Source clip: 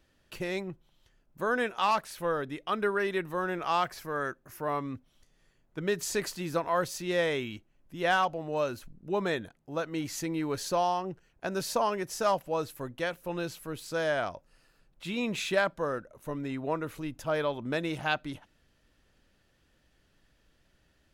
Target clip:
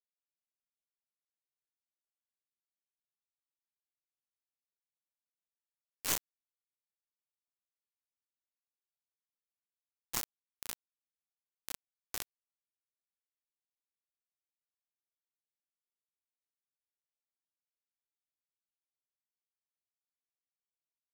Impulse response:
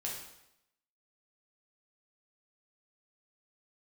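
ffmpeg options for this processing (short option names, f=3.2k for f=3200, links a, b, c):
-filter_complex "[0:a]aecho=1:1:23|58:0.562|0.447[a];[1:a]atrim=start_sample=2205,afade=t=out:st=0.22:d=0.01,atrim=end_sample=10143[b];[a][b]afir=irnorm=-1:irlink=0,acompressor=threshold=-32dB:ratio=12,equalizer=f=125:t=o:w=1:g=-8,equalizer=f=250:t=o:w=1:g=-11,equalizer=f=500:t=o:w=1:g=-4,equalizer=f=1k:t=o:w=1:g=-5,equalizer=f=2k:t=o:w=1:g=-9,equalizer=f=4k:t=o:w=1:g=-9,equalizer=f=8k:t=o:w=1:g=5,afreqshift=17,equalizer=f=210:w=0.69:g=-7,aeval=exprs='0.0531*(cos(1*acos(clip(val(0)/0.0531,-1,1)))-cos(1*PI/2))+0.0168*(cos(2*acos(clip(val(0)/0.0531,-1,1)))-cos(2*PI/2))+0.00299*(cos(4*acos(clip(val(0)/0.0531,-1,1)))-cos(4*PI/2))+0.000299*(cos(8*acos(clip(val(0)/0.0531,-1,1)))-cos(8*PI/2))':c=same,acrusher=bits=4:mix=0:aa=0.000001,asetrate=40440,aresample=44100,atempo=1.09051,volume=9dB"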